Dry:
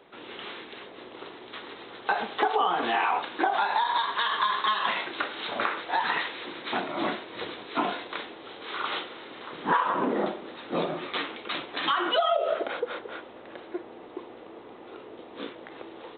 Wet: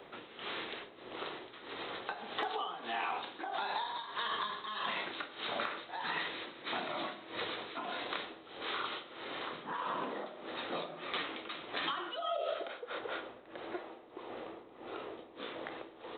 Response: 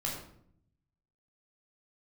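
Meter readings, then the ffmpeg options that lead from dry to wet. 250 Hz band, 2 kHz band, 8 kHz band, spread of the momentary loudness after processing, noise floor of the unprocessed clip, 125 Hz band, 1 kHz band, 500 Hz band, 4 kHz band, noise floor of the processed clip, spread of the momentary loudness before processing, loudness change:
-11.5 dB, -9.0 dB, no reading, 10 LU, -46 dBFS, -10.5 dB, -11.5 dB, -10.0 dB, -7.5 dB, -55 dBFS, 18 LU, -11.0 dB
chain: -filter_complex "[0:a]tremolo=f=1.6:d=0.84,acrossover=split=500|3300[s0][s1][s2];[s0]acompressor=threshold=0.00282:ratio=4[s3];[s1]acompressor=threshold=0.00794:ratio=4[s4];[s2]acompressor=threshold=0.00355:ratio=4[s5];[s3][s4][s5]amix=inputs=3:normalize=0,asplit=2[s6][s7];[1:a]atrim=start_sample=2205[s8];[s7][s8]afir=irnorm=-1:irlink=0,volume=0.266[s9];[s6][s9]amix=inputs=2:normalize=0,volume=1.19"

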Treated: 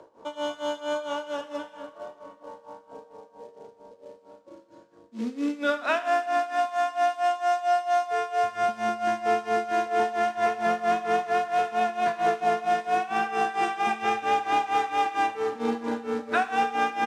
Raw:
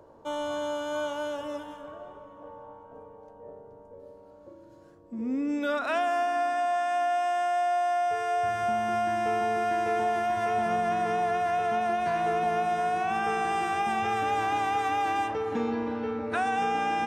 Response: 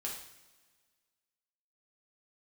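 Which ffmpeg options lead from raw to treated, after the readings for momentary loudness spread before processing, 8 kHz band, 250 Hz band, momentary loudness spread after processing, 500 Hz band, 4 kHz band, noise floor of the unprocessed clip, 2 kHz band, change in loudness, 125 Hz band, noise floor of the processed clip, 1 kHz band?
13 LU, +1.5 dB, 0.0 dB, 13 LU, +1.5 dB, +3.0 dB, -52 dBFS, +2.0 dB, +1.5 dB, no reading, -56 dBFS, +1.5 dB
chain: -filter_complex "[0:a]bandreject=f=88.07:t=h:w=4,bandreject=f=176.14:t=h:w=4,acrusher=bits=5:mode=log:mix=0:aa=0.000001,tremolo=f=4.4:d=0.91,acrossover=split=170 7600:gain=0.2 1 0.0891[s0][s1][s2];[s0][s1][s2]amix=inputs=3:normalize=0,asplit=2[s3][s4];[1:a]atrim=start_sample=2205,lowshelf=f=420:g=-8.5[s5];[s4][s5]afir=irnorm=-1:irlink=0,volume=0.631[s6];[s3][s6]amix=inputs=2:normalize=0,aresample=32000,aresample=44100,volume=1.41"

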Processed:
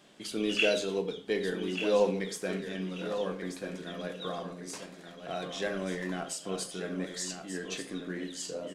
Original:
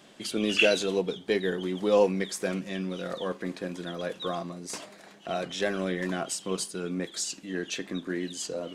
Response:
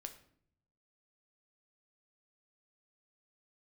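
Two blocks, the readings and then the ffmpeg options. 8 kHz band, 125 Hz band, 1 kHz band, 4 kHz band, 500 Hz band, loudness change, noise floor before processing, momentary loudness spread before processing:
-4.5 dB, -4.0 dB, -4.0 dB, -4.0 dB, -3.5 dB, -3.5 dB, -52 dBFS, 12 LU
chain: -filter_complex "[0:a]aecho=1:1:1186|2372|3558:0.376|0.0864|0.0199[s0];[1:a]atrim=start_sample=2205,afade=t=out:st=0.18:d=0.01,atrim=end_sample=8379[s1];[s0][s1]afir=irnorm=-1:irlink=0"

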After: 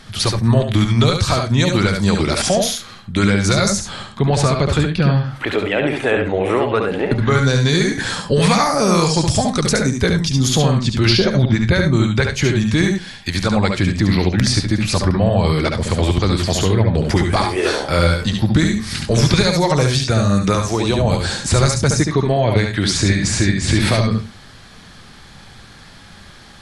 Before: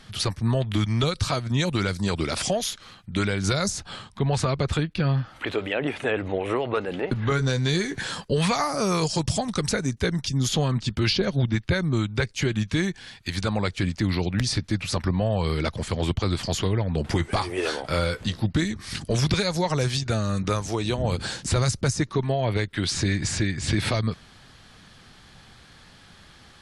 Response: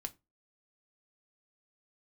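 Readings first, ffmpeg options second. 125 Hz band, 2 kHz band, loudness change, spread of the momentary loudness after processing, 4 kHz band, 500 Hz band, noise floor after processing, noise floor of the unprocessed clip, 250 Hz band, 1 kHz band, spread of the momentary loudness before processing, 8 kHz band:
+9.0 dB, +8.5 dB, +9.0 dB, 4 LU, +8.5 dB, +9.0 dB, -41 dBFS, -51 dBFS, +9.5 dB, +9.0 dB, 4 LU, +9.0 dB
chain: -filter_complex "[0:a]equalizer=f=2900:w=4.5:g=-3,asplit=2[s0][s1];[1:a]atrim=start_sample=2205,asetrate=33957,aresample=44100,adelay=70[s2];[s1][s2]afir=irnorm=-1:irlink=0,volume=0.708[s3];[s0][s3]amix=inputs=2:normalize=0,volume=2.37"

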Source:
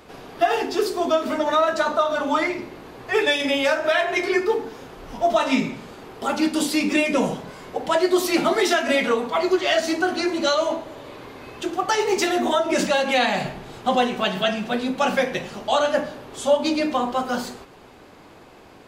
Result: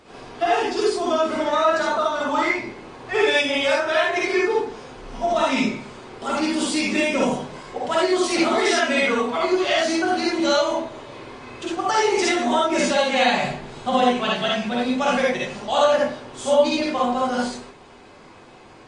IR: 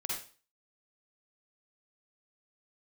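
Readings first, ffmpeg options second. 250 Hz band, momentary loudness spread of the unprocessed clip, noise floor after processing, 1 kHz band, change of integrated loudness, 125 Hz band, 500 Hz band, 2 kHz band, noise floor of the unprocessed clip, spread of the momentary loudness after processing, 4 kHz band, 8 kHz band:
+0.5 dB, 13 LU, -46 dBFS, +1.5 dB, +1.0 dB, -0.5 dB, +0.5 dB, +1.0 dB, -47 dBFS, 12 LU, +1.0 dB, +1.5 dB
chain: -filter_complex "[1:a]atrim=start_sample=2205,afade=t=out:st=0.14:d=0.01,atrim=end_sample=6615[s0];[0:a][s0]afir=irnorm=-1:irlink=0" -ar 22050 -c:a libmp3lame -b:a 40k

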